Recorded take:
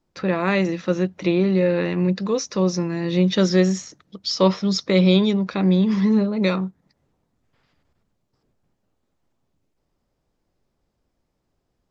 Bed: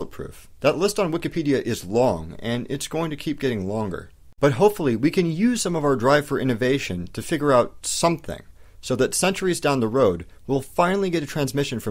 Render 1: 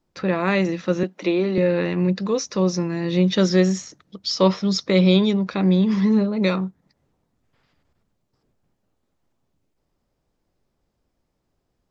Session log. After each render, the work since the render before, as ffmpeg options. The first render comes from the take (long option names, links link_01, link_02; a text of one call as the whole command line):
ffmpeg -i in.wav -filter_complex "[0:a]asettb=1/sr,asplit=3[link_01][link_02][link_03];[link_01]atrim=end=1.034[link_04];[link_02]atrim=start=1.03:end=1.58,asetpts=PTS-STARTPTS,afade=type=in:duration=0.004:curve=qsin,afade=type=out:start_time=0.546:duration=0.004:curve=qsin,highpass=frequency=220:width=0.5412,highpass=frequency=220:width=1.3066[link_05];[link_03]atrim=start=1.576[link_06];[link_04][link_05]acrossfade=duration=0.004:curve1=hsin:curve2=qsin[link_07];[link_07][link_06]acrossfade=duration=0.004:curve1=qsin:curve2=hsin" out.wav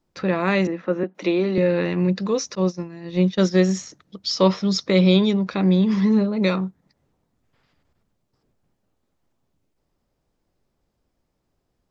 ffmpeg -i in.wav -filter_complex "[0:a]asettb=1/sr,asplit=3[link_01][link_02][link_03];[link_01]atrim=end=0.674[link_04];[link_02]atrim=start=0.67:end=1.15,asetpts=PTS-STARTPTS,afade=type=in:duration=0.004:curve=qsin,afade=type=out:start_time=0.476:duration=0.004:curve=qsin,acrossover=split=200 2200:gain=0.224 1 0.0794[link_05][link_06][link_07];[link_05][link_06][link_07]amix=inputs=3:normalize=0[link_08];[link_03]atrim=start=1.146[link_09];[link_04][link_08]acrossfade=duration=0.004:curve1=hsin:curve2=qsin[link_10];[link_10][link_09]acrossfade=duration=0.004:curve1=qsin:curve2=hsin,asettb=1/sr,asplit=3[link_11][link_12][link_13];[link_11]atrim=end=2.554[link_14];[link_12]atrim=start=2.55:end=3.69,asetpts=PTS-STARTPTS,afade=type=in:duration=0.004:curve=qsin,afade=type=out:start_time=1.136:duration=0.004:curve=qsin,agate=range=-33dB:threshold=-17dB:ratio=3:release=100:detection=peak[link_15];[link_13]atrim=start=3.686[link_16];[link_14][link_15]acrossfade=duration=0.004:curve1=hsin:curve2=qsin[link_17];[link_17][link_16]acrossfade=duration=0.004:curve1=qsin:curve2=hsin" out.wav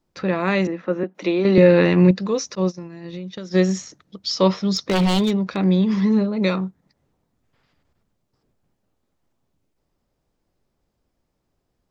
ffmpeg -i in.wav -filter_complex "[0:a]asplit=3[link_01][link_02][link_03];[link_01]afade=type=out:start_time=2.71:duration=0.02[link_04];[link_02]acompressor=threshold=-28dB:ratio=16:attack=3.2:release=140:knee=1:detection=peak,afade=type=in:start_time=2.71:duration=0.02,afade=type=out:start_time=3.5:duration=0.02[link_05];[link_03]afade=type=in:start_time=3.5:duration=0.02[link_06];[link_04][link_05][link_06]amix=inputs=3:normalize=0,asettb=1/sr,asplit=3[link_07][link_08][link_09];[link_07]atrim=end=4.604[link_10];[link_08]atrim=start=4.6:end=5.64,asetpts=PTS-STARTPTS,afade=type=in:duration=0.004:curve=qsin,afade=type=out:start_time=1.036:duration=0.004:curve=qsin,aeval=exprs='0.224*(abs(mod(val(0)/0.224+3,4)-2)-1)':channel_layout=same[link_11];[link_09]atrim=start=5.636[link_12];[link_10][link_11]acrossfade=duration=0.004:curve1=hsin:curve2=qsin[link_13];[link_13][link_12]acrossfade=duration=0.004:curve1=qsin:curve2=hsin,asplit=3[link_14][link_15][link_16];[link_14]atrim=end=1.452[link_17];[link_15]atrim=start=1.448:end=2.112,asetpts=PTS-STARTPTS,volume=7dB[link_18];[link_16]atrim=start=2.108[link_19];[link_17][link_18]acrossfade=duration=0.004:curve1=hsin:curve2=hsin[link_20];[link_20][link_19]acrossfade=duration=0.004:curve1=hsin:curve2=hsin" out.wav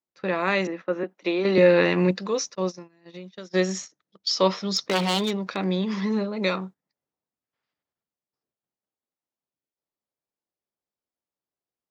ffmpeg -i in.wav -af "agate=range=-17dB:threshold=-32dB:ratio=16:detection=peak,highpass=frequency=500:poles=1" out.wav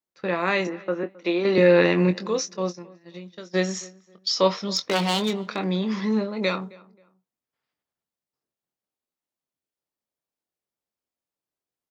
ffmpeg -i in.wav -filter_complex "[0:a]asplit=2[link_01][link_02];[link_02]adelay=23,volume=-10dB[link_03];[link_01][link_03]amix=inputs=2:normalize=0,asplit=2[link_04][link_05];[link_05]adelay=266,lowpass=frequency=2000:poles=1,volume=-22dB,asplit=2[link_06][link_07];[link_07]adelay=266,lowpass=frequency=2000:poles=1,volume=0.29[link_08];[link_04][link_06][link_08]amix=inputs=3:normalize=0" out.wav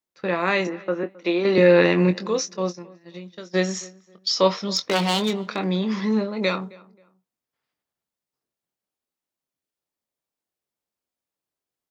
ffmpeg -i in.wav -af "volume=1.5dB" out.wav